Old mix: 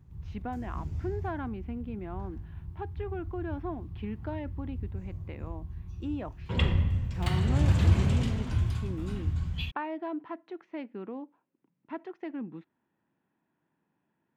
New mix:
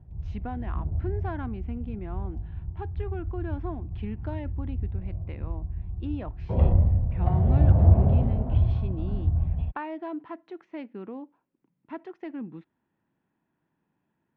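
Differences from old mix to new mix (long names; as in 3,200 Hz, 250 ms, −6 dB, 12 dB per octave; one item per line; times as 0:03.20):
background: add low-pass with resonance 680 Hz, resonance Q 4.3
master: add low-shelf EQ 82 Hz +11.5 dB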